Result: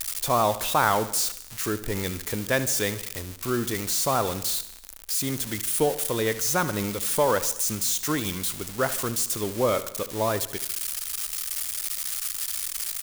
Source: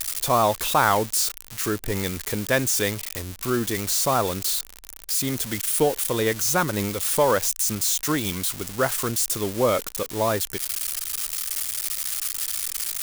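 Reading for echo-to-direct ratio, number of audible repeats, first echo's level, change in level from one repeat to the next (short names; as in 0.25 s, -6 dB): -13.5 dB, 4, -15.0 dB, -5.0 dB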